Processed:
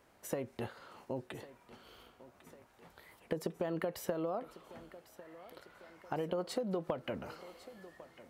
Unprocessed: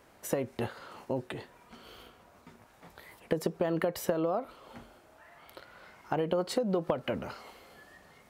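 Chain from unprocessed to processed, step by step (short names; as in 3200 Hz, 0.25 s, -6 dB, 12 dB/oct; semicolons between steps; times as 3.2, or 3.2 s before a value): thinning echo 1.1 s, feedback 66%, high-pass 210 Hz, level -16.5 dB; gain -6.5 dB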